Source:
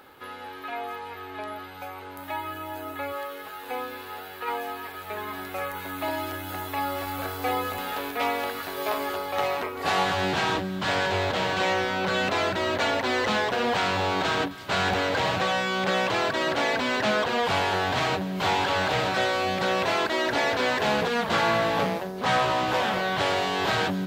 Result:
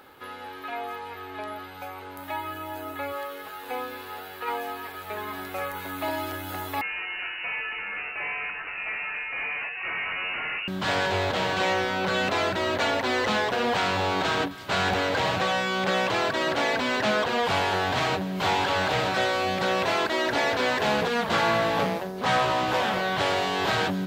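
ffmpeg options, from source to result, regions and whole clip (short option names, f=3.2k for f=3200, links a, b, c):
-filter_complex "[0:a]asettb=1/sr,asplit=3[a][b][c];[a]atrim=end=6.814[d];[b]atrim=start=6.81:end=10.68,asetpts=PTS-STARTPTS,afade=t=in:d=0.004:c=qsin,afade=t=out:st=3.866:d=0.004:c=qsin,asoftclip=type=hard:threshold=-28.5dB,lowpass=f=2.6k:t=q:w=0.5098,lowpass=f=2.6k:t=q:w=0.6013,lowpass=f=2.6k:t=q:w=0.9,lowpass=f=2.6k:t=q:w=2.563,afreqshift=-3000[e];[c]atrim=start=10.676[f];[d][e]acrossfade=d=0.004:c1=hsin:c2=qsin[g];[g][f]acrossfade=d=0.004:c1=qsin:c2=hsin"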